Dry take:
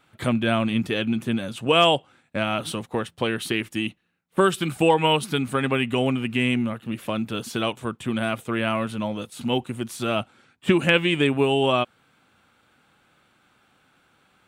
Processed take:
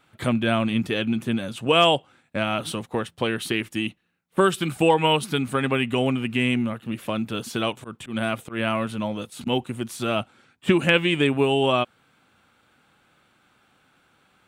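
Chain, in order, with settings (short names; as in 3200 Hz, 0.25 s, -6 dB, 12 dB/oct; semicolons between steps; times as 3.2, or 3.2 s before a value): 7.77–9.47 auto swell 0.115 s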